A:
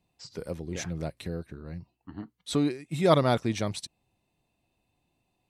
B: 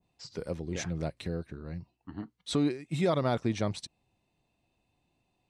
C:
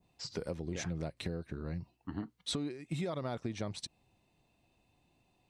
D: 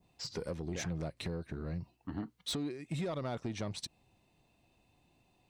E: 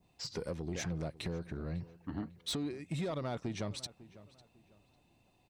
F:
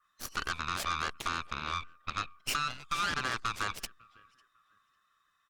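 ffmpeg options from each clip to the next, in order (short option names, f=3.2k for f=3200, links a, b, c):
-af "alimiter=limit=-18dB:level=0:latency=1:release=151,lowpass=8.1k,adynamicequalizer=threshold=0.00708:dfrequency=1700:dqfactor=0.7:tfrequency=1700:tqfactor=0.7:attack=5:release=100:ratio=0.375:range=2.5:mode=cutabove:tftype=highshelf"
-af "acompressor=threshold=-37dB:ratio=12,volume=3.5dB"
-af "asoftclip=type=tanh:threshold=-31.5dB,volume=2dB"
-filter_complex "[0:a]asplit=2[a][b];[b]adelay=550,lowpass=f=2.9k:p=1,volume=-18dB,asplit=2[c][d];[d]adelay=550,lowpass=f=2.9k:p=1,volume=0.31,asplit=2[e][f];[f]adelay=550,lowpass=f=2.9k:p=1,volume=0.31[g];[a][c][e][g]amix=inputs=4:normalize=0"
-af "afftfilt=real='real(if(lt(b,960),b+48*(1-2*mod(floor(b/48),2)),b),0)':imag='imag(if(lt(b,960),b+48*(1-2*mod(floor(b/48),2)),b),0)':win_size=2048:overlap=0.75,aeval=exprs='0.0562*(cos(1*acos(clip(val(0)/0.0562,-1,1)))-cos(1*PI/2))+0.00891*(cos(6*acos(clip(val(0)/0.0562,-1,1)))-cos(6*PI/2))+0.0112*(cos(7*acos(clip(val(0)/0.0562,-1,1)))-cos(7*PI/2))':c=same,volume=4dB" -ar 48000 -c:a libopus -b:a 64k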